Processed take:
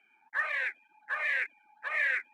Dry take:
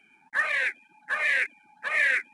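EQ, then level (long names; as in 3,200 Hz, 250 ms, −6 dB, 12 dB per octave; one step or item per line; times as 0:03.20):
resonant band-pass 860 Hz, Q 0.71
spectral tilt +2 dB per octave
−3.5 dB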